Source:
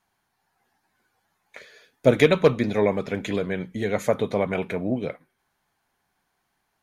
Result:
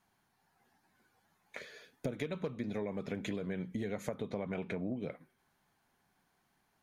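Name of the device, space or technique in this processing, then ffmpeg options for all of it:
serial compression, peaks first: -filter_complex "[0:a]equalizer=f=190:w=0.73:g=5.5,acompressor=threshold=-26dB:ratio=5,acompressor=threshold=-36dB:ratio=2,asettb=1/sr,asplit=3[a][b][c];[a]atrim=end=4.264[d];[b]atrim=start=4.26:end=4.87,asetpts=PTS-STARTPTS,afade=t=in:d=0.004:c=qsin,afade=t=out:st=0.606:d=0.004:c=qsin,lowpass=7.7k[e];[c]atrim=start=4.866[f];[d][e]acrossfade=d=0.004:c1=hsin:c2=qsin[g];[g][f]acrossfade=d=0.004:c1=qsin:c2=hsin,volume=-2.5dB"

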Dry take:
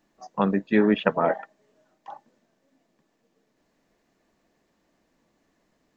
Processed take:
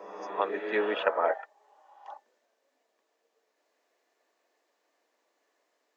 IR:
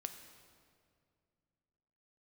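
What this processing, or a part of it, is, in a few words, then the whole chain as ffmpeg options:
ghost voice: -filter_complex "[0:a]areverse[a];[1:a]atrim=start_sample=2205[b];[a][b]afir=irnorm=-1:irlink=0,areverse,highpass=f=420:w=0.5412,highpass=f=420:w=1.3066"

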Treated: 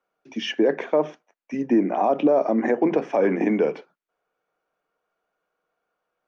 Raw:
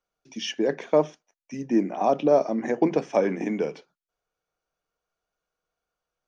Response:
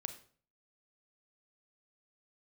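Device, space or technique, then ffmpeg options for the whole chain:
DJ mixer with the lows and highs turned down: -filter_complex "[0:a]acrossover=split=180 2700:gain=0.126 1 0.158[a][b][c];[a][b][c]amix=inputs=3:normalize=0,alimiter=limit=-19dB:level=0:latency=1:release=86,volume=8.5dB"

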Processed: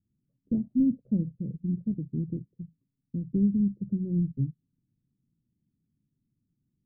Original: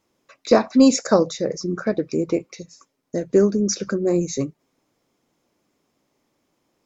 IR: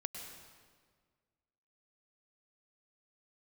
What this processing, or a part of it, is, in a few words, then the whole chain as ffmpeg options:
the neighbour's flat through the wall: -af "lowpass=f=200:w=0.5412,lowpass=f=200:w=1.3066,equalizer=f=120:t=o:w=0.77:g=4.5"

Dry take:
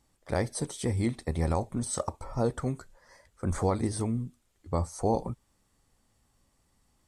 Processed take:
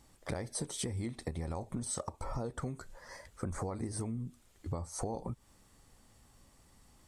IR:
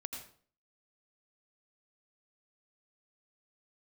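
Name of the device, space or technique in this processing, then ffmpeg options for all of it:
serial compression, peaks first: -filter_complex "[0:a]acompressor=threshold=-38dB:ratio=4,acompressor=threshold=-42dB:ratio=3,asettb=1/sr,asplit=3[a][b][c];[a]atrim=end=3.554[d];[b]atrim=start=3.55:end=4.02,asetpts=PTS-STARTPTS,afade=t=in:d=0.004:c=qsin,afade=t=out:st=0.466:d=0.004:c=qsin,equalizer=f=3.4k:t=o:w=0.51:g=-10.5[e];[c]atrim=start=4.016[f];[d][e]acrossfade=d=0.004:c1=hsin:c2=qsin[g];[g][f]acrossfade=d=0.004:c1=qsin:c2=hsin,volume=7dB"

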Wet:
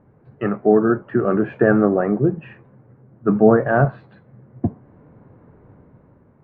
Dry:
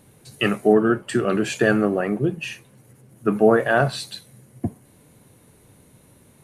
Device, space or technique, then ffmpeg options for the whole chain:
action camera in a waterproof case: -filter_complex "[0:a]asettb=1/sr,asplit=3[a][b][c];[a]atrim=end=3.294[d];[b]atrim=start=3.29:end=3.85,asetpts=PTS-STARTPTS,afade=t=in:d=0.004:c=qsin,afade=t=out:st=0.556:d=0.004:c=qsin,bass=f=250:g=7,treble=f=4k:g=12[e];[c]atrim=start=3.846[f];[d][e]acrossfade=d=0.004:c1=hsin:c2=qsin[g];[g][f]acrossfade=d=0.004:c1=qsin:c2=hsin,lowpass=f=1.5k:w=0.5412,lowpass=f=1.5k:w=1.3066,dynaudnorm=f=160:g=9:m=6dB" -ar 22050 -c:a aac -b:a 64k

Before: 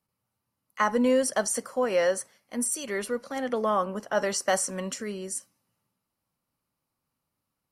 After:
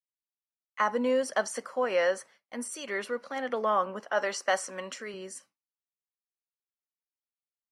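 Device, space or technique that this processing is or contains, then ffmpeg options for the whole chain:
hearing-loss simulation: -filter_complex "[0:a]lowpass=2.4k,aemphasis=mode=production:type=riaa,agate=range=-33dB:threshold=-51dB:ratio=3:detection=peak,asettb=1/sr,asplit=3[a][b][c];[a]atrim=end=0.804[d];[b]atrim=start=0.8:end=1.29,asetpts=PTS-STARTPTS,afade=t=in:d=0.004:c=qsin,afade=t=out:st=0.486:d=0.004:c=qsin,equalizer=f=2k:w=0.77:g=-4[e];[c]atrim=start=1.286[f];[d][e]acrossfade=d=0.004:c1=hsin:c2=qsin[g];[g][f]acrossfade=d=0.004:c1=qsin:c2=hsin,asettb=1/sr,asplit=3[h][i][j];[h]atrim=end=4.004[k];[i]atrim=start=4:end=5.14,asetpts=PTS-STARTPTS,afade=t=in:d=0.004:c=qsin,afade=t=out:st=1.136:d=0.004:c=qsin,highpass=f=270:p=1[l];[j]atrim=start=5.136[m];[k][l]acrossfade=d=0.004:c1=hsin:c2=qsin[n];[n][m]acrossfade=d=0.004:c1=qsin:c2=hsin"

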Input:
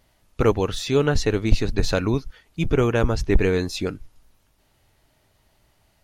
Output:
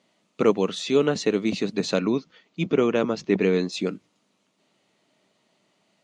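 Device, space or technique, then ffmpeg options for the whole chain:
television speaker: -filter_complex "[0:a]highpass=f=190:w=0.5412,highpass=f=190:w=1.3066,equalizer=f=190:t=q:w=4:g=6,equalizer=f=840:t=q:w=4:g=-5,equalizer=f=1.6k:t=q:w=4:g=-7,equalizer=f=5.3k:t=q:w=4:g=-5,lowpass=f=7.7k:w=0.5412,lowpass=f=7.7k:w=1.3066,asettb=1/sr,asplit=3[a][b][c];[a]atrim=end=1.994[d];[b]atrim=start=1.99:end=3.72,asetpts=PTS-STARTPTS,afade=t=in:d=0.004:c=qsin,afade=t=out:st=1.726:d=0.004:c=qsin,lowpass=f=6.4k:w=0.5412,lowpass=f=6.4k:w=1.3066[e];[c]atrim=start=3.716[f];[d][e]acrossfade=d=0.004:c1=hsin:c2=qsin[g];[g][f]acrossfade=d=0.004:c1=qsin:c2=hsin"

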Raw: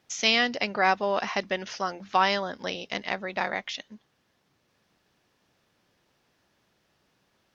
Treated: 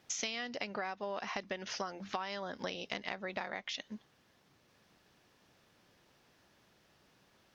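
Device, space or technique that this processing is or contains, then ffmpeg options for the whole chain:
serial compression, leveller first: -af "acompressor=threshold=-26dB:ratio=2,acompressor=threshold=-38dB:ratio=6,volume=2dB"

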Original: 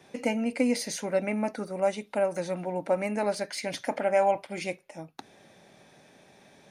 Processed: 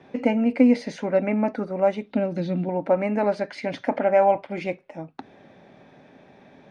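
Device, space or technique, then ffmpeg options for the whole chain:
phone in a pocket: -filter_complex "[0:a]lowpass=3.7k,equalizer=f=260:t=o:w=0.21:g=6,highshelf=f=2.5k:g=-9,asettb=1/sr,asplit=3[a][b][c];[a]atrim=end=2.114[d];[b]atrim=start=2.11:end=2.69,asetpts=PTS-STARTPTS,afade=t=in:d=0.004:c=qsin,afade=t=out:st=0.576:d=0.004:c=qsin,equalizer=f=125:t=o:w=1:g=5,equalizer=f=250:t=o:w=1:g=8,equalizer=f=500:t=o:w=1:g=-5,equalizer=f=1k:t=o:w=1:g=-11,equalizer=f=2k:t=o:w=1:g=-4,equalizer=f=4k:t=o:w=1:g=10,equalizer=f=8k:t=o:w=1:g=-8[e];[c]atrim=start=2.686[f];[d][e]acrossfade=d=0.004:c1=hsin:c2=qsin[g];[g][f]acrossfade=d=0.004:c1=qsin:c2=hsin,volume=6dB"

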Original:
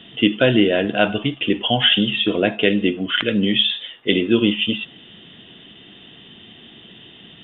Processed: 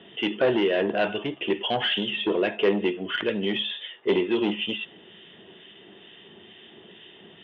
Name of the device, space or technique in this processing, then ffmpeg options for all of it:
guitar amplifier with harmonic tremolo: -filter_complex "[0:a]acrossover=split=1400[a][b];[a]aeval=exprs='val(0)*(1-0.5/2+0.5/2*cos(2*PI*2.2*n/s))':c=same[c];[b]aeval=exprs='val(0)*(1-0.5/2-0.5/2*cos(2*PI*2.2*n/s))':c=same[d];[c][d]amix=inputs=2:normalize=0,asoftclip=type=tanh:threshold=-16dB,highpass=100,equalizer=f=130:t=q:w=4:g=-8,equalizer=f=260:t=q:w=4:g=-6,equalizer=f=390:t=q:w=4:g=9,equalizer=f=580:t=q:w=4:g=4,equalizer=f=910:t=q:w=4:g=5,equalizer=f=1.8k:t=q:w=4:g=4,lowpass=f=3.6k:w=0.5412,lowpass=f=3.6k:w=1.3066,volume=-3dB"

